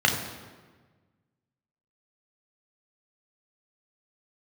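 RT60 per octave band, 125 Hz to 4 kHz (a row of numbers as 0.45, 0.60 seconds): 1.9, 1.7, 1.5, 1.3, 1.2, 1.0 seconds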